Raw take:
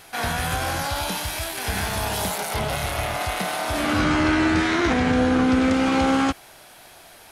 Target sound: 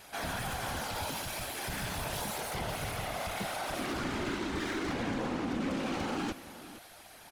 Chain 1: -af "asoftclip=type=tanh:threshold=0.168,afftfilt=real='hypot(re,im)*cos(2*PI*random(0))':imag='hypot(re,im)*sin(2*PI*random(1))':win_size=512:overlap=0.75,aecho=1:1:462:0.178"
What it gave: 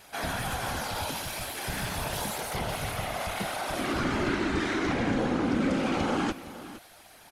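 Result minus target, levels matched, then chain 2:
saturation: distortion -10 dB
-af "asoftclip=type=tanh:threshold=0.0473,afftfilt=real='hypot(re,im)*cos(2*PI*random(0))':imag='hypot(re,im)*sin(2*PI*random(1))':win_size=512:overlap=0.75,aecho=1:1:462:0.178"

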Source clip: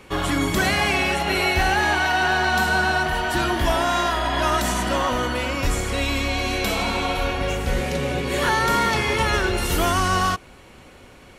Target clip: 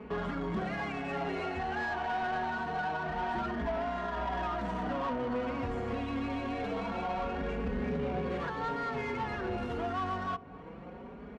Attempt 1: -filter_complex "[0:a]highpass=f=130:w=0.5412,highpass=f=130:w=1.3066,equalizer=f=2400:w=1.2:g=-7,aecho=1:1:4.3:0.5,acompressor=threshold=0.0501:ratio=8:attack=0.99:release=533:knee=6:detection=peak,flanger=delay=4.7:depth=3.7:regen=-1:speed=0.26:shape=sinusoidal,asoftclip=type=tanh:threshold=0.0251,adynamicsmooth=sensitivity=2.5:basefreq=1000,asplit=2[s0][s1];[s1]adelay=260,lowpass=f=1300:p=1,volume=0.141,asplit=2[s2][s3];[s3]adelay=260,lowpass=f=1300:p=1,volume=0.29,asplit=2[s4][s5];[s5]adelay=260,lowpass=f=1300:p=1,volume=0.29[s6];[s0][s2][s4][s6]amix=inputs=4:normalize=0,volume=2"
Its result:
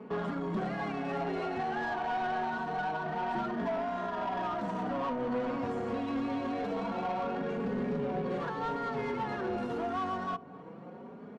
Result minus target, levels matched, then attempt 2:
2 kHz band -2.5 dB; 125 Hz band -2.0 dB
-filter_complex "[0:a]highpass=f=55:w=0.5412,highpass=f=55:w=1.3066,aecho=1:1:4.3:0.5,acompressor=threshold=0.0501:ratio=8:attack=0.99:release=533:knee=6:detection=peak,flanger=delay=4.7:depth=3.7:regen=-1:speed=0.26:shape=sinusoidal,asoftclip=type=tanh:threshold=0.0251,adynamicsmooth=sensitivity=2.5:basefreq=1000,asplit=2[s0][s1];[s1]adelay=260,lowpass=f=1300:p=1,volume=0.141,asplit=2[s2][s3];[s3]adelay=260,lowpass=f=1300:p=1,volume=0.29,asplit=2[s4][s5];[s5]adelay=260,lowpass=f=1300:p=1,volume=0.29[s6];[s0][s2][s4][s6]amix=inputs=4:normalize=0,volume=2"

